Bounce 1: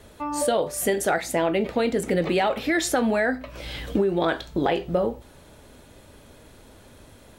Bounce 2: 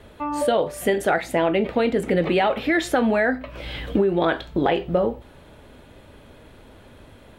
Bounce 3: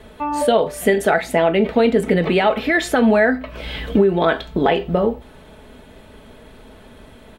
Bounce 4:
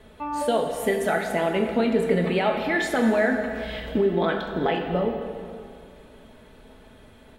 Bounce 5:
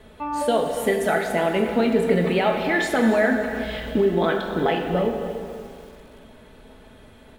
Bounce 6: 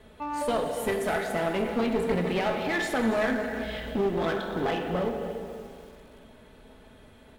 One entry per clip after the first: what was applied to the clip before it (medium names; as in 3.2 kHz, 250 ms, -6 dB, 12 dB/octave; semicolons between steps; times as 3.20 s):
FFT filter 3.1 kHz 0 dB, 5.9 kHz -11 dB, 13 kHz -9 dB; trim +2.5 dB
comb 4.6 ms, depth 41%; trim +3.5 dB
plate-style reverb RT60 2.3 s, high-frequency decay 0.8×, pre-delay 0 ms, DRR 3.5 dB; trim -8 dB
bit-crushed delay 287 ms, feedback 35%, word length 7-bit, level -13.5 dB; trim +2 dB
one-sided clip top -23 dBFS; trim -4.5 dB